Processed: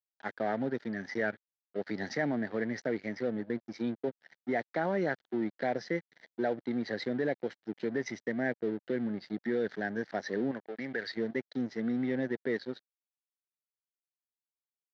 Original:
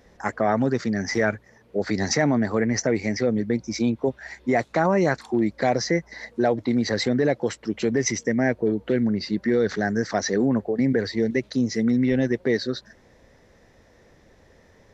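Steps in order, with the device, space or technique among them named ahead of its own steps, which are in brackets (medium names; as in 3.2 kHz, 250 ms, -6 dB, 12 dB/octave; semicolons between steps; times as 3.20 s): 10.51–11.17 s: tilt shelf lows -8.5 dB, about 780 Hz; blown loudspeaker (crossover distortion -35.5 dBFS; cabinet simulation 170–4200 Hz, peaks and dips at 1.1 kHz -9 dB, 1.7 kHz +4 dB, 2.6 kHz -7 dB); trim -8.5 dB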